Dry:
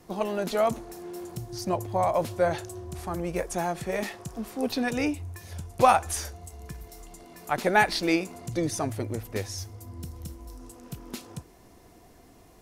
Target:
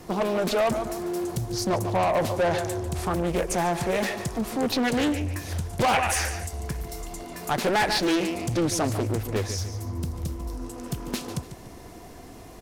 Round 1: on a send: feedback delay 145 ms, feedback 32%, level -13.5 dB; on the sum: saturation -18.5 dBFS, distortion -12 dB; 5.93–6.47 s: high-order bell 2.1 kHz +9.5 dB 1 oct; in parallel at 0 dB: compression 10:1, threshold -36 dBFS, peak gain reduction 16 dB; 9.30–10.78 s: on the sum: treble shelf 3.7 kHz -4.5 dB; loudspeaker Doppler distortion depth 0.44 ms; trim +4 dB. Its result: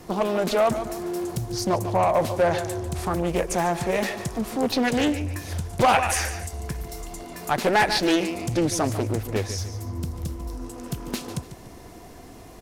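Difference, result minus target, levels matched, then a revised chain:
saturation: distortion -5 dB
on a send: feedback delay 145 ms, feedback 32%, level -13.5 dB; on the sum: saturation -25.5 dBFS, distortion -7 dB; 5.93–6.47 s: high-order bell 2.1 kHz +9.5 dB 1 oct; in parallel at 0 dB: compression 10:1, threshold -36 dBFS, peak gain reduction 11.5 dB; 9.30–10.78 s: on the sum: treble shelf 3.7 kHz -4.5 dB; loudspeaker Doppler distortion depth 0.44 ms; trim +4 dB

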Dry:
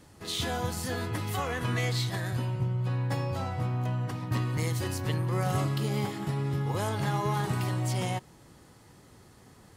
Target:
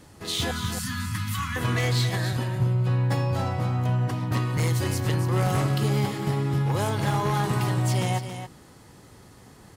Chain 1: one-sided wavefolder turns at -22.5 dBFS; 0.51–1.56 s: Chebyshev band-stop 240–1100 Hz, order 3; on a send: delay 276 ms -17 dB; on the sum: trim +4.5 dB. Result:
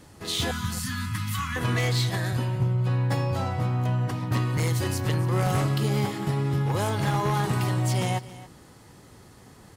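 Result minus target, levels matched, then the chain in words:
echo-to-direct -8 dB
one-sided wavefolder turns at -22.5 dBFS; 0.51–1.56 s: Chebyshev band-stop 240–1100 Hz, order 3; on a send: delay 276 ms -9 dB; on the sum: trim +4.5 dB

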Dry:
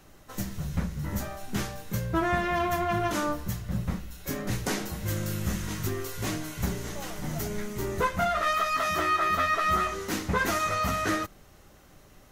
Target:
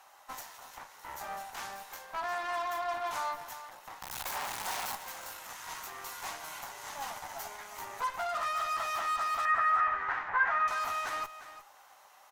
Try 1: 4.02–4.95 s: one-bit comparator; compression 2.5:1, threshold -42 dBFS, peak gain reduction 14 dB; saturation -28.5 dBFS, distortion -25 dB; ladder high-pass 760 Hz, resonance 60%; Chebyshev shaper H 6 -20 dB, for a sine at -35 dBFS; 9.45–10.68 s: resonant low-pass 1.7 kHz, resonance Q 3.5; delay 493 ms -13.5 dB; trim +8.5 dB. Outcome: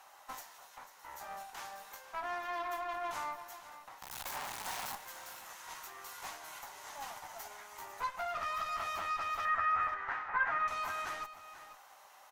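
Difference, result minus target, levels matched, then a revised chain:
echo 139 ms late; compression: peak gain reduction +6 dB
4.02–4.95 s: one-bit comparator; compression 2.5:1, threshold -32 dBFS, peak gain reduction 8 dB; saturation -28.5 dBFS, distortion -17 dB; ladder high-pass 760 Hz, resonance 60%; Chebyshev shaper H 6 -20 dB, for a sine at -35 dBFS; 9.45–10.68 s: resonant low-pass 1.7 kHz, resonance Q 3.5; delay 354 ms -13.5 dB; trim +8.5 dB

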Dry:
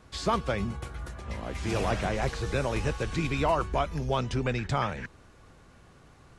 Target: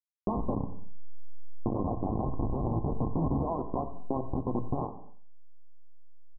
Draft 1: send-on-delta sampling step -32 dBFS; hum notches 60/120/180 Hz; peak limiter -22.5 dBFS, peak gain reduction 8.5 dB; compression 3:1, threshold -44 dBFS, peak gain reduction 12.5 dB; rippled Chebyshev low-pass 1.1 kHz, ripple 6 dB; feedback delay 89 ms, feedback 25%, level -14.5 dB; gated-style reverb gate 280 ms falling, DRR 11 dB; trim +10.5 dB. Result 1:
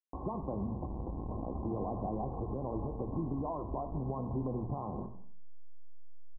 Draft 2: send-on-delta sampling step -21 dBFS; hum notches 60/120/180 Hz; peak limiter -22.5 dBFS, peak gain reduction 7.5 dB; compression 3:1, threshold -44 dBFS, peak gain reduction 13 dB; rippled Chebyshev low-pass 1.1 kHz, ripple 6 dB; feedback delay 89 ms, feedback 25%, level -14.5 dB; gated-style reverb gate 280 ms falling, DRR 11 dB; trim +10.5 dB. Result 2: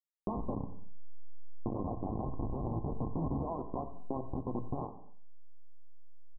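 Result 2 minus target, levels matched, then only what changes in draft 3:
compression: peak gain reduction +5.5 dB
change: compression 3:1, threshold -35.5 dBFS, peak gain reduction 7.5 dB

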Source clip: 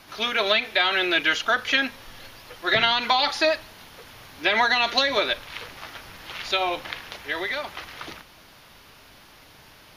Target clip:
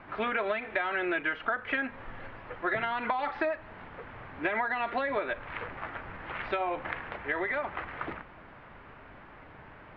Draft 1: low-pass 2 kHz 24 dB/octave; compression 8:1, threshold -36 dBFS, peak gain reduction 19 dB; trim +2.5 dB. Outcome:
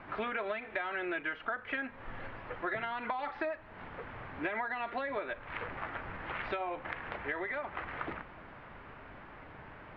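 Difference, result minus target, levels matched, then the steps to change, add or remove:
compression: peak gain reduction +5.5 dB
change: compression 8:1, threshold -29.5 dBFS, peak gain reduction 13 dB

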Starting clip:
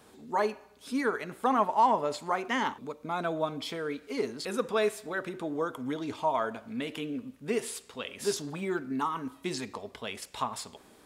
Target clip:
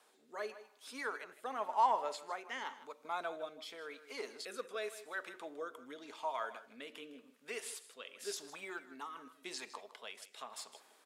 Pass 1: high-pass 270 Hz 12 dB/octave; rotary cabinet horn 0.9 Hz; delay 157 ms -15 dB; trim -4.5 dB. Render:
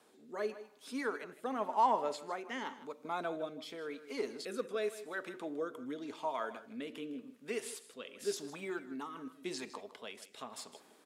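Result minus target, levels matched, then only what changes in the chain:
250 Hz band +9.0 dB
change: high-pass 640 Hz 12 dB/octave

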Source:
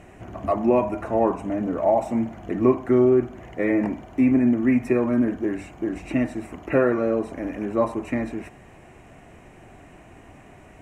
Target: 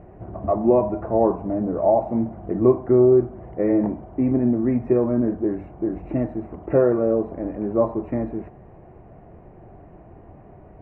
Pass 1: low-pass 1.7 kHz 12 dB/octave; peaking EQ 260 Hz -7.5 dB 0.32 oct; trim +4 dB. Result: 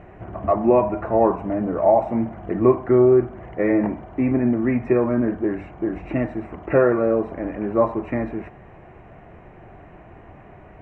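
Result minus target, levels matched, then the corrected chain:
2 kHz band +11.0 dB
low-pass 750 Hz 12 dB/octave; peaking EQ 260 Hz -7.5 dB 0.32 oct; trim +4 dB

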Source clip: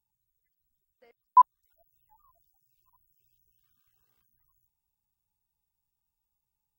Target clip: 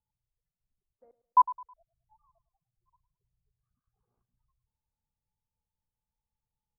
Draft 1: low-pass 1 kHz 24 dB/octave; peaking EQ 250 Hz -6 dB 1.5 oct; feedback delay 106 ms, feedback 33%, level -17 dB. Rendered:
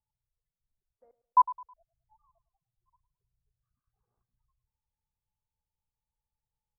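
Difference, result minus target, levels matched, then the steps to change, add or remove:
250 Hz band -4.5 dB
remove: peaking EQ 250 Hz -6 dB 1.5 oct

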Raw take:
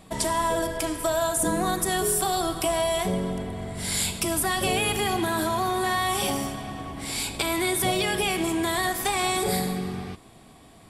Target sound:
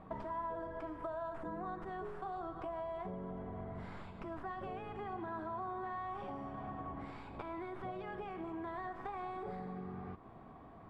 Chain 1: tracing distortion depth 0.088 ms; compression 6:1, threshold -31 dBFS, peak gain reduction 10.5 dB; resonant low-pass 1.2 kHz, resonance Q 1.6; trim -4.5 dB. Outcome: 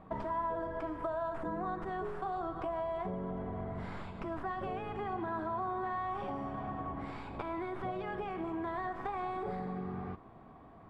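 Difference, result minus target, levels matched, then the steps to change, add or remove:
compression: peak gain reduction -5.5 dB
change: compression 6:1, threshold -37.5 dBFS, peak gain reduction 15.5 dB

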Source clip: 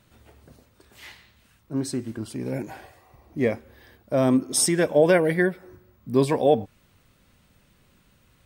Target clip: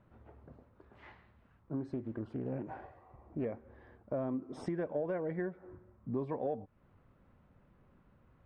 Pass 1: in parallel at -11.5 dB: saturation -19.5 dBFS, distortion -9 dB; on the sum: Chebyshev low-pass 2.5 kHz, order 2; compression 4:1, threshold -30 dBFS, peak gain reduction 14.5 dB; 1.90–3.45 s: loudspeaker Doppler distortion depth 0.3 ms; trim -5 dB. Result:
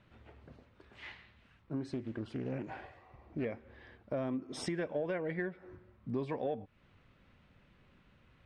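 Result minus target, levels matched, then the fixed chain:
2 kHz band +7.0 dB
in parallel at -11.5 dB: saturation -19.5 dBFS, distortion -9 dB; on the sum: Chebyshev low-pass 1.1 kHz, order 2; compression 4:1, threshold -30 dBFS, peak gain reduction 15 dB; 1.90–3.45 s: loudspeaker Doppler distortion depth 0.3 ms; trim -5 dB

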